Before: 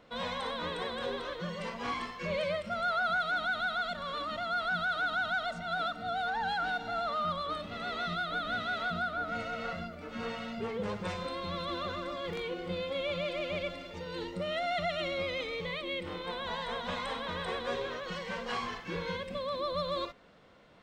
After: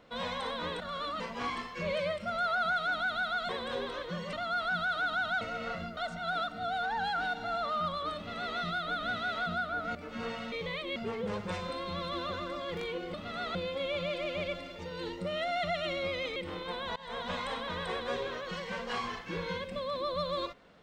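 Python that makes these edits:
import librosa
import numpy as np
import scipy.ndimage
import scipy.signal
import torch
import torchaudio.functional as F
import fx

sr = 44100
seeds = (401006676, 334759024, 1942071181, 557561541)

y = fx.edit(x, sr, fx.swap(start_s=0.8, length_s=0.84, other_s=3.93, other_length_s=0.4),
    fx.duplicate(start_s=7.6, length_s=0.41, to_s=12.7),
    fx.move(start_s=9.39, length_s=0.56, to_s=5.41),
    fx.move(start_s=15.51, length_s=0.44, to_s=10.52),
    fx.fade_in_from(start_s=16.55, length_s=0.25, floor_db=-21.5), tone=tone)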